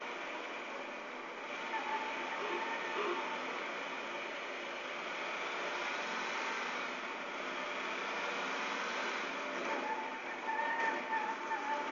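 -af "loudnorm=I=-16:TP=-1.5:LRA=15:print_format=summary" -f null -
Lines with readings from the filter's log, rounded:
Input Integrated:    -38.0 LUFS
Input True Peak:     -23.3 dBTP
Input LRA:             1.8 LU
Input Threshold:     -48.0 LUFS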